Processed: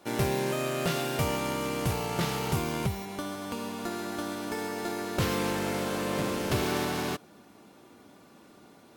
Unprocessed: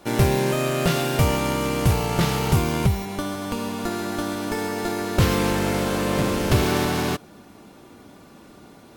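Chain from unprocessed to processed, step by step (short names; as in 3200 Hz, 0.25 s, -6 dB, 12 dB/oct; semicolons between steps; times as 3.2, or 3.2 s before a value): HPF 160 Hz 6 dB/oct; gain -6.5 dB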